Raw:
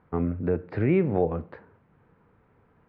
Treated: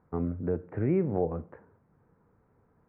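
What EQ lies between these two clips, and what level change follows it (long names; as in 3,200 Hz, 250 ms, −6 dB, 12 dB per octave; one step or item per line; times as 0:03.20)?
Gaussian smoothing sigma 4.5 samples
−4.0 dB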